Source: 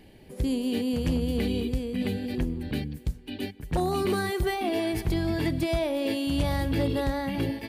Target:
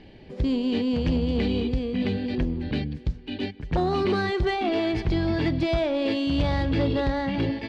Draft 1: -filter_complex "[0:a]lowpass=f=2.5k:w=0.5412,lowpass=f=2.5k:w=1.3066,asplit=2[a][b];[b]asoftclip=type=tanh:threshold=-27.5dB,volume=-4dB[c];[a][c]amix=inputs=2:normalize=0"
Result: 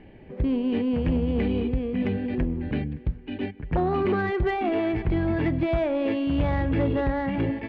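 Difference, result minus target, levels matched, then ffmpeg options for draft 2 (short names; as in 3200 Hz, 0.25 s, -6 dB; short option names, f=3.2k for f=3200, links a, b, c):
4000 Hz band -9.5 dB
-filter_complex "[0:a]lowpass=f=5k:w=0.5412,lowpass=f=5k:w=1.3066,asplit=2[a][b];[b]asoftclip=type=tanh:threshold=-27.5dB,volume=-4dB[c];[a][c]amix=inputs=2:normalize=0"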